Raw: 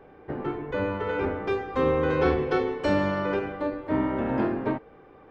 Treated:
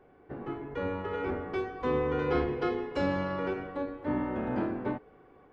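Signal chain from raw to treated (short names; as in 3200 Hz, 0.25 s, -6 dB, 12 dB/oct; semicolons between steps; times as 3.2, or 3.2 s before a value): speed mistake 25 fps video run at 24 fps; AGC gain up to 3 dB; gain -8.5 dB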